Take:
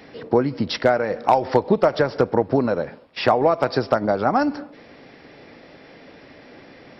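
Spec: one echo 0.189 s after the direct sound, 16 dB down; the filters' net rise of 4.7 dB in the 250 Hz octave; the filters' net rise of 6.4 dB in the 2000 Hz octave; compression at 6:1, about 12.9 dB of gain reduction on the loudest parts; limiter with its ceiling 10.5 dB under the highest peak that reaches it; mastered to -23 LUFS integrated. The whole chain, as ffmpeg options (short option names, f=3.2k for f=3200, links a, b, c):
-af "equalizer=f=250:t=o:g=5.5,equalizer=f=2k:t=o:g=9,acompressor=threshold=-24dB:ratio=6,alimiter=limit=-19.5dB:level=0:latency=1,aecho=1:1:189:0.158,volume=9.5dB"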